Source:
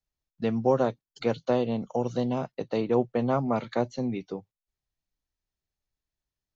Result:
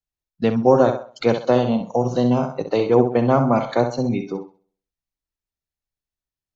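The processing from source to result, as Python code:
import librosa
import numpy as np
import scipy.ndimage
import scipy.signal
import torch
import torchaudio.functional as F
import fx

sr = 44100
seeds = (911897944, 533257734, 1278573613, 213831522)

y = fx.room_flutter(x, sr, wall_m=11.2, rt60_s=0.53)
y = fx.noise_reduce_blind(y, sr, reduce_db=13)
y = F.gain(torch.from_numpy(y), 8.5).numpy()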